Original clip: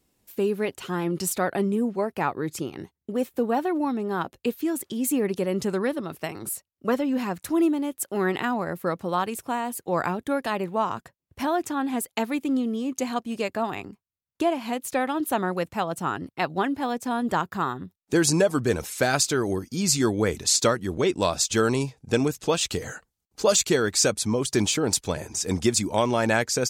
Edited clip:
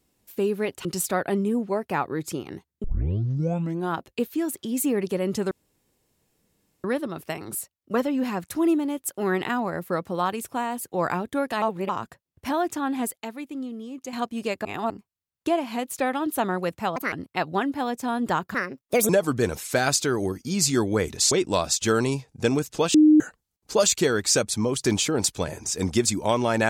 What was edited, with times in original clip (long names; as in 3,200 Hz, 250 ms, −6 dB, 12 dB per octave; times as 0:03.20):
0:00.85–0:01.12: remove
0:03.11: tape start 1.11 s
0:05.78: splice in room tone 1.33 s
0:10.56–0:10.83: reverse
0:12.10–0:13.07: clip gain −8.5 dB
0:13.59–0:13.84: reverse
0:15.90–0:16.15: play speed 153%
0:17.57–0:18.36: play speed 144%
0:20.58–0:21.00: remove
0:22.63–0:22.89: beep over 306 Hz −11 dBFS